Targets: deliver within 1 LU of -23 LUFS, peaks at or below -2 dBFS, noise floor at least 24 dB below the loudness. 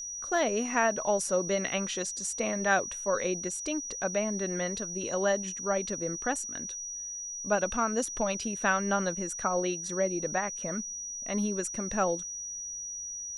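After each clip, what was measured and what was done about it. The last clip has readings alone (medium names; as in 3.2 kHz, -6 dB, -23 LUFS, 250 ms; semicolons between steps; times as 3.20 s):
steady tone 5.8 kHz; tone level -36 dBFS; loudness -30.5 LUFS; peak level -13.0 dBFS; loudness target -23.0 LUFS
-> band-stop 5.8 kHz, Q 30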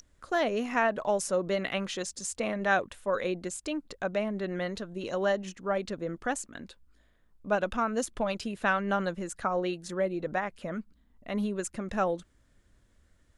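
steady tone not found; loudness -31.5 LUFS; peak level -13.0 dBFS; loudness target -23.0 LUFS
-> trim +8.5 dB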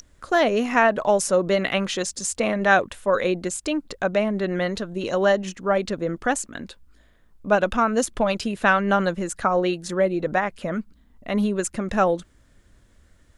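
loudness -23.0 LUFS; peak level -4.5 dBFS; noise floor -58 dBFS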